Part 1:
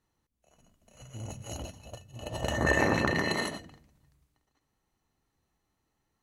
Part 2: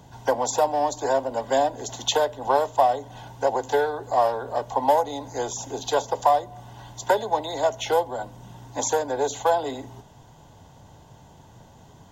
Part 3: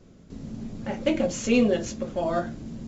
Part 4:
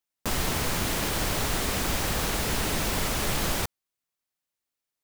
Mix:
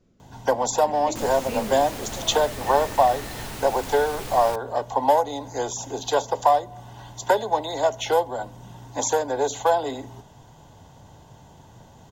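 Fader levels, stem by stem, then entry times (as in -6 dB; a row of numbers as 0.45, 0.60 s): -12.0, +1.0, -10.5, -8.5 dB; 0.00, 0.20, 0.00, 0.90 s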